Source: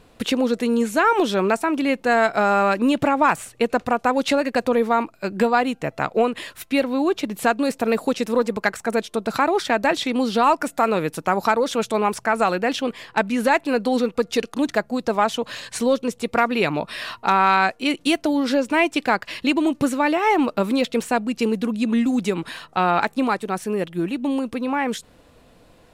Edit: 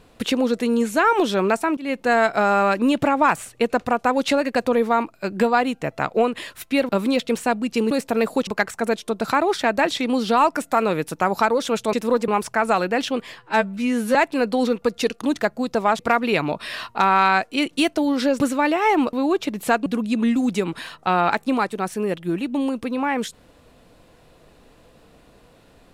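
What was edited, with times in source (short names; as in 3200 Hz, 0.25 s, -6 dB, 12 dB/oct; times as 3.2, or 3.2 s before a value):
1.77–2.09 fade in equal-power, from -23.5 dB
6.89–7.62 swap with 20.54–21.56
8.18–8.53 move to 11.99
13.1–13.48 stretch 2×
15.32–16.27 cut
18.68–19.81 cut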